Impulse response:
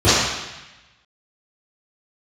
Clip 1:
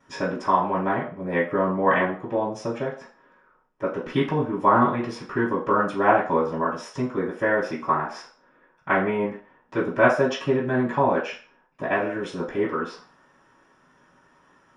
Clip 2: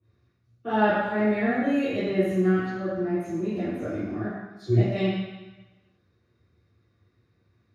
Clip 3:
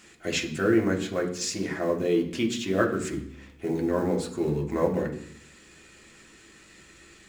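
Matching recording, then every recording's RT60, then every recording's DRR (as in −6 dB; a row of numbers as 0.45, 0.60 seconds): 2; 0.45, 1.0, 0.65 seconds; −15.0, −16.0, 0.0 decibels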